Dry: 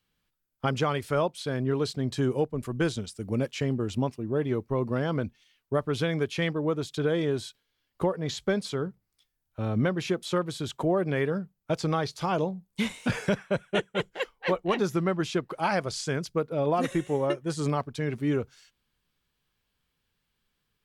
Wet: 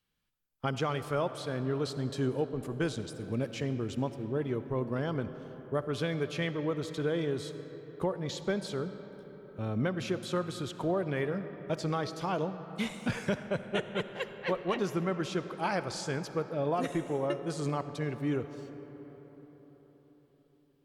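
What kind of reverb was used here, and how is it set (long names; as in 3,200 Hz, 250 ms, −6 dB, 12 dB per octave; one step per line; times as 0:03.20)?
comb and all-pass reverb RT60 4.9 s, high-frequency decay 0.45×, pre-delay 25 ms, DRR 10.5 dB
level −5 dB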